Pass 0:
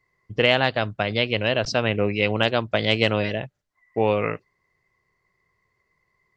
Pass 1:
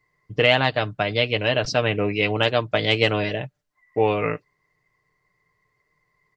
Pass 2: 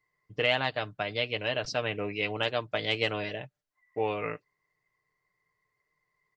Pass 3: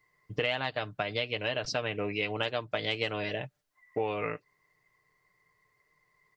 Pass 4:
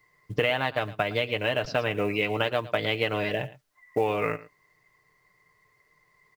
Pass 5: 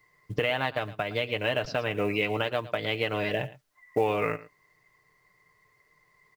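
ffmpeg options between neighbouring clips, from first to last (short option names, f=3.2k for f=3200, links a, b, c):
-af "aecho=1:1:6.7:0.5"
-af "lowshelf=f=340:g=-5.5,volume=-8dB"
-af "acompressor=threshold=-38dB:ratio=3,volume=7.5dB"
-filter_complex "[0:a]asplit=2[a][b];[b]adelay=110.8,volume=-18dB,highshelf=f=4k:g=-2.49[c];[a][c]amix=inputs=2:normalize=0,acrossover=split=3300[d][e];[e]acompressor=threshold=-53dB:ratio=4:attack=1:release=60[f];[d][f]amix=inputs=2:normalize=0,acrusher=bits=8:mode=log:mix=0:aa=0.000001,volume=6dB"
-af "alimiter=limit=-13dB:level=0:latency=1:release=354"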